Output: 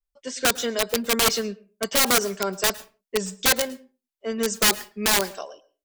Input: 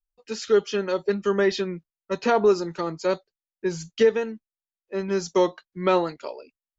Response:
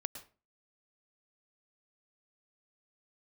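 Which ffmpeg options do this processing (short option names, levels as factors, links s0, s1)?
-filter_complex "[0:a]aecho=1:1:5.9:0.35,asetrate=51156,aresample=44100,aeval=exprs='(mod(5.62*val(0)+1,2)-1)/5.62':c=same,asplit=2[s0][s1];[1:a]atrim=start_sample=2205,afade=t=out:st=0.36:d=0.01,atrim=end_sample=16317,highshelf=f=6100:g=6.5[s2];[s1][s2]afir=irnorm=-1:irlink=0,volume=0.376[s3];[s0][s3]amix=inputs=2:normalize=0,adynamicequalizer=threshold=0.0251:dfrequency=3200:dqfactor=0.7:tfrequency=3200:tqfactor=0.7:attack=5:release=100:ratio=0.375:range=3:mode=boostabove:tftype=highshelf,volume=0.708"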